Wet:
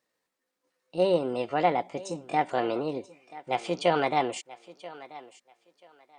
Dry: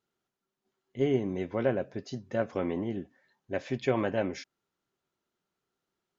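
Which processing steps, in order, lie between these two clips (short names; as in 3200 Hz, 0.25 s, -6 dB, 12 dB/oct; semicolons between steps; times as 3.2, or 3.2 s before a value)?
low shelf 200 Hz -9 dB; pitch shift +5 st; on a send: thinning echo 0.984 s, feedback 22%, high-pass 280 Hz, level -17.5 dB; on the sum: gain +5.5 dB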